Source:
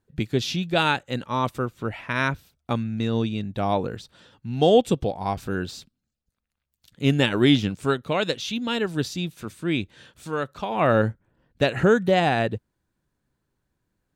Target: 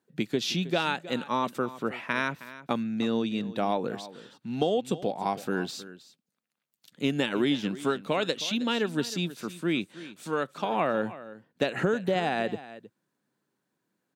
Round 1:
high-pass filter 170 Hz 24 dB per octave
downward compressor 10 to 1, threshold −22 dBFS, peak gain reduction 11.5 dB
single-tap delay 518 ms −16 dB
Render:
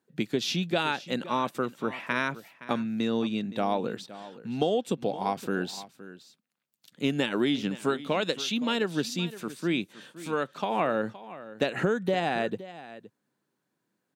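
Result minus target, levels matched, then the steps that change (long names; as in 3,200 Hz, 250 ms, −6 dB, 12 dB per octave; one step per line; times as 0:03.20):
echo 202 ms late
change: single-tap delay 316 ms −16 dB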